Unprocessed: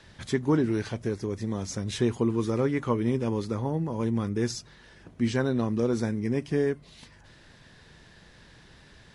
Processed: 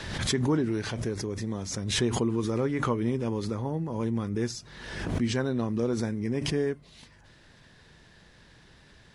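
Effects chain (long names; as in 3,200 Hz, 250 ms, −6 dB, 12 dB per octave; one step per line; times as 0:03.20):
background raised ahead of every attack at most 46 dB per second
level −2.5 dB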